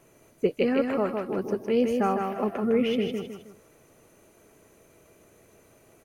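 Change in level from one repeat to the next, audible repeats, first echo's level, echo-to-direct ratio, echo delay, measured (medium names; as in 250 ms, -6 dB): -8.5 dB, 3, -4.5 dB, -4.0 dB, 157 ms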